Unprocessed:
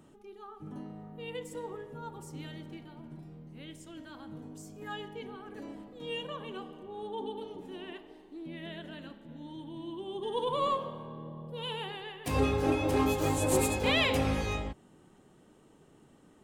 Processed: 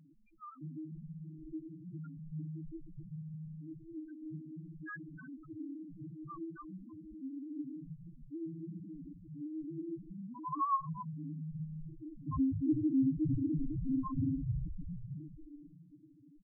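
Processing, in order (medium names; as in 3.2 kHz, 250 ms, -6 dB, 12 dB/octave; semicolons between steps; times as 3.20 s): median filter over 15 samples; frequency-shifting echo 314 ms, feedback 56%, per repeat -140 Hz, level -6.5 dB; FFT band-reject 340–970 Hz; comb 6.6 ms, depth 43%; loudest bins only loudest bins 2; trim +2 dB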